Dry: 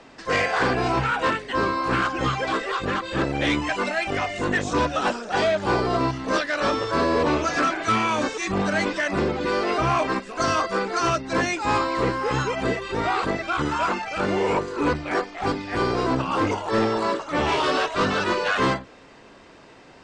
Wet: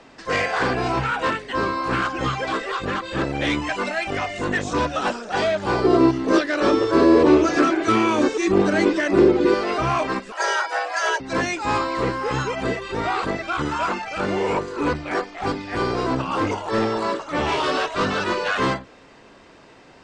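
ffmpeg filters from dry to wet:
-filter_complex "[0:a]asettb=1/sr,asplit=3[a][b][c];[a]atrim=end=5.844[d];[b]atrim=start=5.84:end=9.54,asetpts=PTS-STARTPTS,afade=t=in:d=0.004:c=qsin,afade=t=out:st=3.696:d=0.004:c=qsin,equalizer=f=350:t=o:w=0.71:g=14[e];[c]atrim=start=9.536[f];[d][e]acrossfade=d=0.004:c1=hsin:c2=qsin[g];[g][f]acrossfade=d=0.004:c1=qsin:c2=hsin,asettb=1/sr,asplit=3[h][i][j];[h]atrim=end=10.324[k];[i]atrim=start=10.32:end=11.2,asetpts=PTS-STARTPTS,afade=t=in:d=0.004:c=qsin,afade=t=out:st=0.876:d=0.004:c=qsin,afreqshift=300[l];[j]atrim=start=11.196[m];[k][l]acrossfade=d=0.004:c1=hsin:c2=qsin[n];[n][m]acrossfade=d=0.004:c1=qsin:c2=hsin"

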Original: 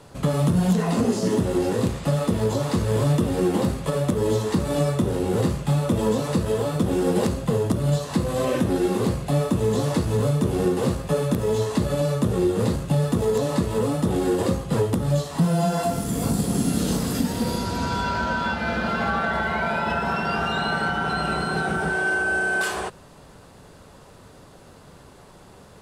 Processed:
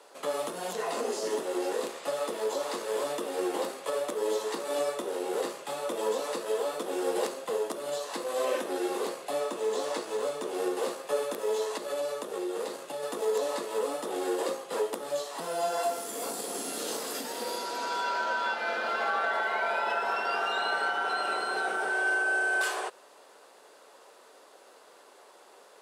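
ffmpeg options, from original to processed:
-filter_complex "[0:a]asettb=1/sr,asplit=3[a][b][c];[a]atrim=end=9.404[d];[b]atrim=start=9.4:end=10.55,asetpts=PTS-STARTPTS,afade=t=in:d=0.004:c=qsin,afade=t=out:st=1.146:d=0.004:c=qsin,equalizer=f=12k:t=o:w=0.42:g=-7[e];[c]atrim=start=10.546[f];[d][e]acrossfade=d=0.004:c1=hsin:c2=qsin[g];[g][f]acrossfade=d=0.004:c1=qsin:c2=hsin,asettb=1/sr,asplit=3[h][i][j];[h]atrim=end=11.744[k];[i]atrim=start=11.74:end=13.03,asetpts=PTS-STARTPTS,afade=t=in:d=0.004:c=qsin,afade=t=out:st=1.286:d=0.004:c=qsin,acompressor=threshold=-22dB:ratio=2:attack=3.2:release=140:knee=1:detection=peak[l];[j]atrim=start=13.026[m];[k][l]acrossfade=d=0.004:c1=hsin:c2=qsin[n];[n][m]acrossfade=d=0.004:c1=qsin:c2=hsin,highpass=f=400:w=0.5412,highpass=f=400:w=1.3066,volume=-4dB"

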